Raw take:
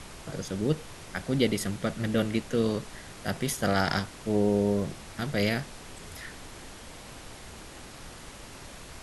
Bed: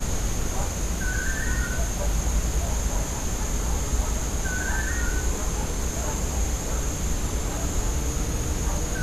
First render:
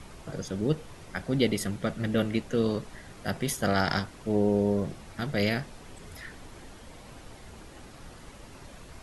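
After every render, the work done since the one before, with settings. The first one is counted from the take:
broadband denoise 7 dB, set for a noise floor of −46 dBFS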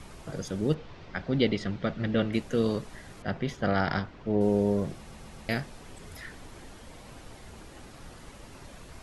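0:00.74–0:02.33: low-pass filter 4,800 Hz 24 dB per octave
0:03.22–0:04.41: high-frequency loss of the air 210 metres
0:04.97: stutter in place 0.13 s, 4 plays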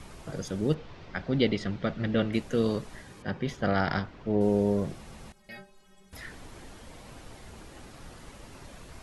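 0:03.03–0:03.46: notch comb filter 680 Hz
0:05.32–0:06.13: stiff-string resonator 190 Hz, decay 0.32 s, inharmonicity 0.008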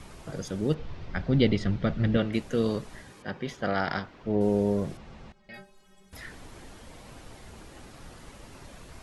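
0:00.79–0:02.17: low-shelf EQ 140 Hz +12 dB
0:03.10–0:04.24: low-shelf EQ 170 Hz −9 dB
0:04.97–0:05.54: high-frequency loss of the air 140 metres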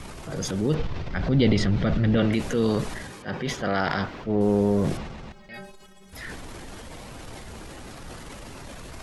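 transient designer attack −5 dB, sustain +7 dB
in parallel at +0.5 dB: brickwall limiter −22 dBFS, peak gain reduction 10 dB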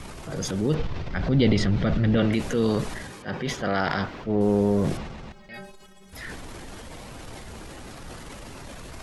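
no processing that can be heard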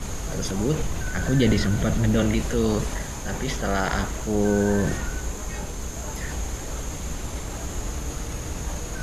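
mix in bed −5 dB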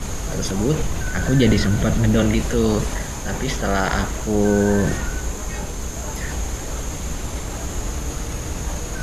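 level +4 dB

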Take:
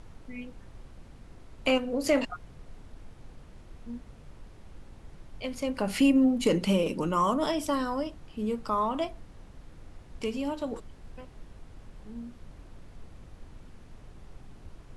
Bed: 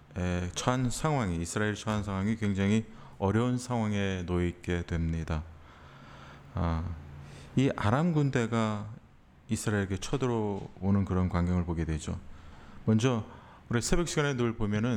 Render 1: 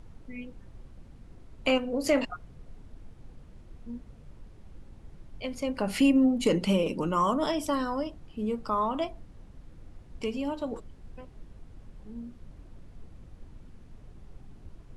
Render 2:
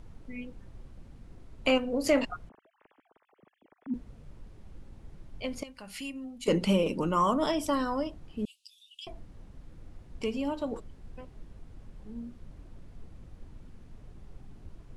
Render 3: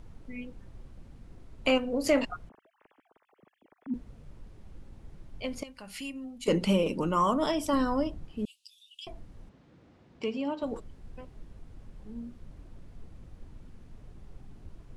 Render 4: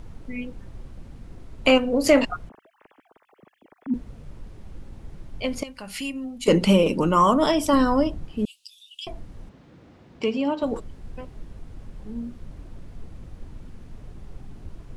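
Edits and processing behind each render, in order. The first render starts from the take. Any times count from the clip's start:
broadband denoise 6 dB, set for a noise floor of −51 dBFS
0:02.49–0:03.94: three sine waves on the formant tracks; 0:05.63–0:06.48: guitar amp tone stack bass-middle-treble 5-5-5; 0:08.45–0:09.07: Butterworth high-pass 2,700 Hz 96 dB per octave
0:07.73–0:08.25: low-shelf EQ 350 Hz +6.5 dB; 0:09.49–0:10.63: band-pass filter 160–4,900 Hz
level +8 dB

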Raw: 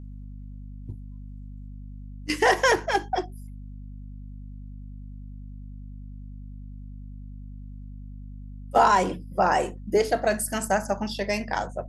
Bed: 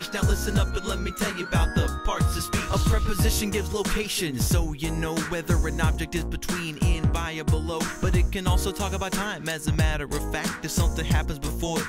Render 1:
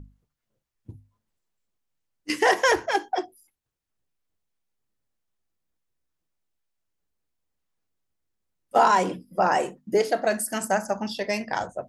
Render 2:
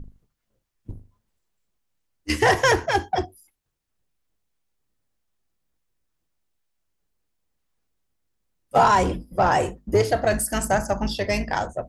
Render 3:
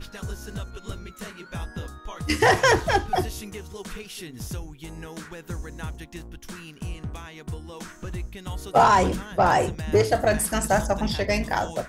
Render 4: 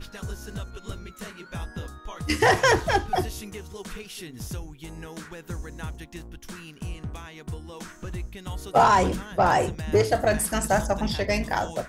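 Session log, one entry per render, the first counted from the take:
mains-hum notches 50/100/150/200/250 Hz
sub-octave generator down 2 octaves, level 0 dB; in parallel at −4.5 dB: soft clipping −24 dBFS, distortion −7 dB
mix in bed −11 dB
level −1 dB

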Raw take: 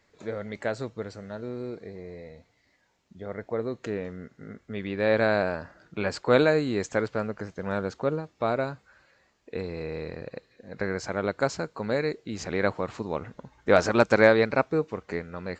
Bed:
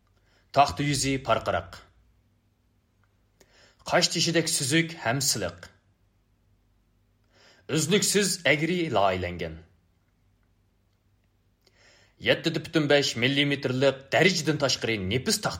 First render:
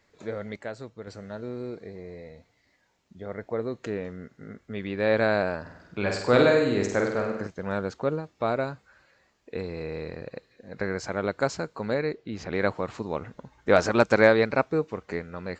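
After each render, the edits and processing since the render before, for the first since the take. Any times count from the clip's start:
0:00.56–0:01.07: clip gain −6.5 dB
0:05.61–0:07.47: flutter between parallel walls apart 8.5 metres, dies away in 0.74 s
0:11.94–0:12.53: high-frequency loss of the air 130 metres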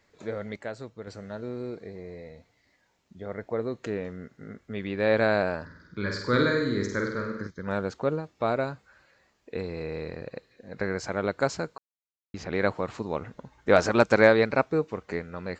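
0:05.65–0:07.68: phaser with its sweep stopped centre 2,700 Hz, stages 6
0:11.78–0:12.34: silence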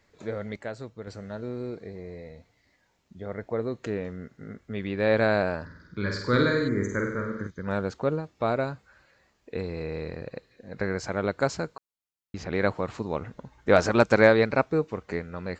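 0:06.70–0:07.59: healed spectral selection 2,400–5,900 Hz after
low-shelf EQ 130 Hz +5 dB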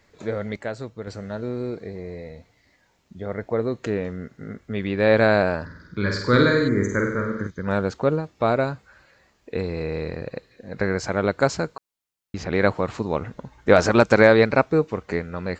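level +5.5 dB
brickwall limiter −2 dBFS, peak gain reduction 3 dB

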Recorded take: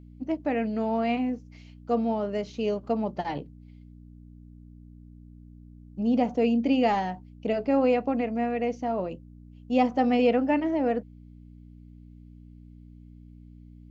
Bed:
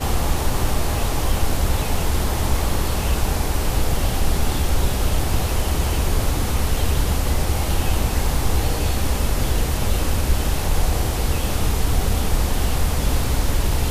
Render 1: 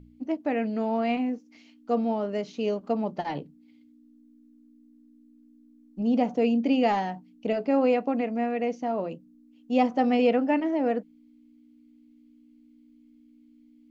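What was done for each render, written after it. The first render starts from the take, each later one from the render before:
hum removal 60 Hz, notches 3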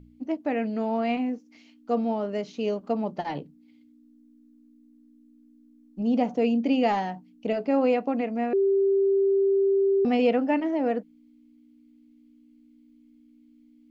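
0:08.53–0:10.05: beep over 392 Hz −18.5 dBFS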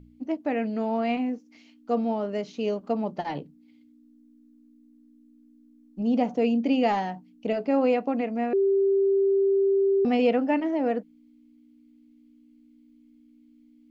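no processing that can be heard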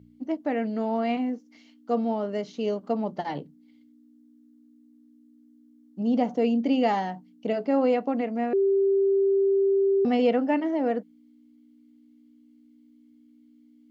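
high-pass filter 82 Hz
notch filter 2,500 Hz, Q 9.1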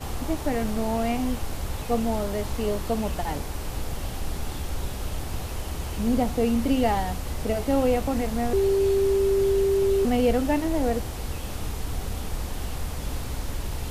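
mix in bed −11 dB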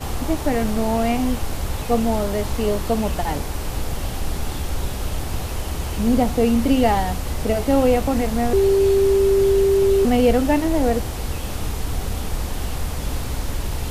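level +5.5 dB

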